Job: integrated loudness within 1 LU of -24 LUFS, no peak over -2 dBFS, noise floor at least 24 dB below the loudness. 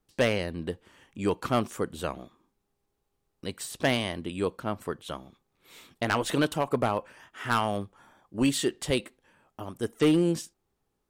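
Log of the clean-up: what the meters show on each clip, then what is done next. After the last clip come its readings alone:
clipped 0.5%; flat tops at -16.5 dBFS; loudness -29.0 LUFS; peak -16.5 dBFS; loudness target -24.0 LUFS
-> clip repair -16.5 dBFS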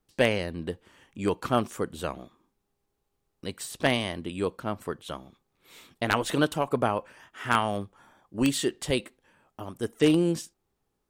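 clipped 0.0%; loudness -28.5 LUFS; peak -7.5 dBFS; loudness target -24.0 LUFS
-> gain +4.5 dB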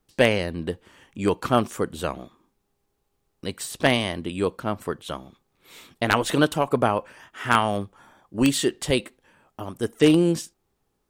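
loudness -24.0 LUFS; peak -3.0 dBFS; noise floor -74 dBFS

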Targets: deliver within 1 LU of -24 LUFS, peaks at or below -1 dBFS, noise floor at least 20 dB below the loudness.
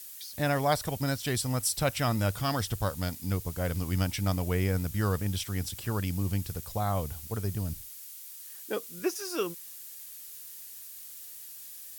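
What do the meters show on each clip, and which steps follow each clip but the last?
noise floor -46 dBFS; noise floor target -52 dBFS; loudness -31.5 LUFS; peak -11.5 dBFS; loudness target -24.0 LUFS
-> denoiser 6 dB, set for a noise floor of -46 dBFS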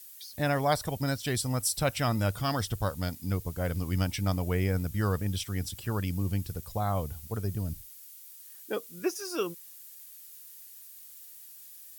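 noise floor -50 dBFS; noise floor target -51 dBFS
-> denoiser 6 dB, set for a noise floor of -50 dBFS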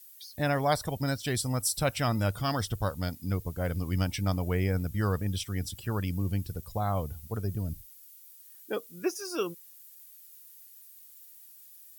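noise floor -53 dBFS; loudness -31.0 LUFS; peak -11.5 dBFS; loudness target -24.0 LUFS
-> gain +7 dB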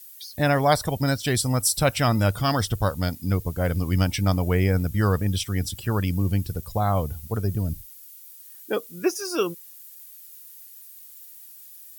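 loudness -24.0 LUFS; peak -4.5 dBFS; noise floor -46 dBFS

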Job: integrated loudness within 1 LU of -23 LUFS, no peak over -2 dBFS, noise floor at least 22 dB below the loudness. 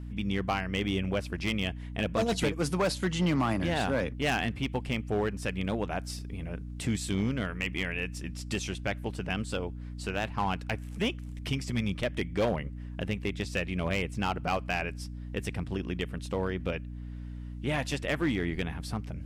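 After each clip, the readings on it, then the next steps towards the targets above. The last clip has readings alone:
clipped 1.3%; flat tops at -21.5 dBFS; hum 60 Hz; harmonics up to 300 Hz; hum level -37 dBFS; loudness -32.0 LUFS; peak -21.5 dBFS; loudness target -23.0 LUFS
-> clip repair -21.5 dBFS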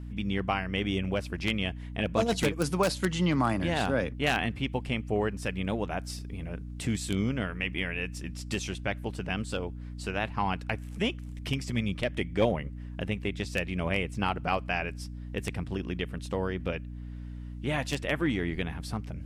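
clipped 0.0%; hum 60 Hz; harmonics up to 300 Hz; hum level -37 dBFS
-> de-hum 60 Hz, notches 5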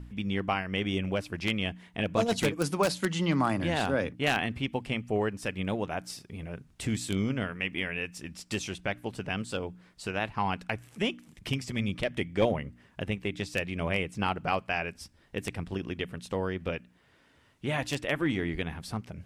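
hum none; loudness -31.5 LUFS; peak -11.5 dBFS; loudness target -23.0 LUFS
-> gain +8.5 dB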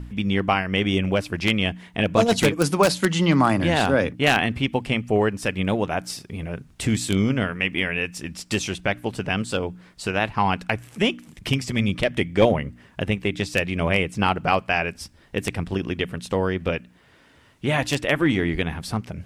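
loudness -23.0 LUFS; peak -3.0 dBFS; noise floor -55 dBFS

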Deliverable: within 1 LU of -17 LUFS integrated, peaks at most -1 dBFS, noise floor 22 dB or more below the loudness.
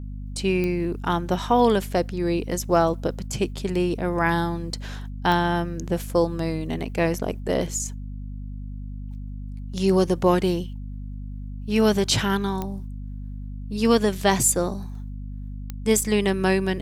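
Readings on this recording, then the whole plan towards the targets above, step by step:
clicks 4; hum 50 Hz; harmonics up to 250 Hz; hum level -31 dBFS; loudness -23.5 LUFS; peak -6.0 dBFS; loudness target -17.0 LUFS
-> de-click; de-hum 50 Hz, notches 5; gain +6.5 dB; limiter -1 dBFS

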